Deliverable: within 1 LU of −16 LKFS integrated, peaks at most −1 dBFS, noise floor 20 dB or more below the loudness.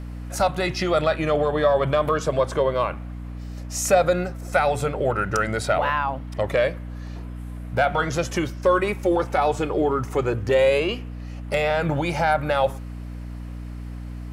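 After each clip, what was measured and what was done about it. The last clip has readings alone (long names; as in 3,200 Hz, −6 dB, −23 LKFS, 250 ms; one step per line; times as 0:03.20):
mains hum 60 Hz; hum harmonics up to 300 Hz; level of the hum −31 dBFS; integrated loudness −22.5 LKFS; sample peak −6.5 dBFS; target loudness −16.0 LKFS
→ hum removal 60 Hz, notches 5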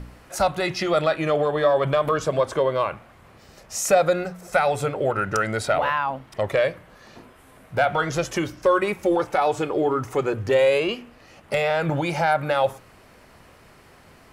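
mains hum none found; integrated loudness −23.0 LKFS; sample peak −6.5 dBFS; target loudness −16.0 LKFS
→ level +7 dB
brickwall limiter −1 dBFS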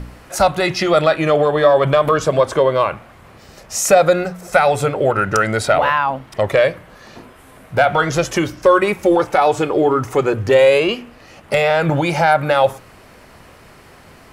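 integrated loudness −16.0 LKFS; sample peak −1.0 dBFS; background noise floor −44 dBFS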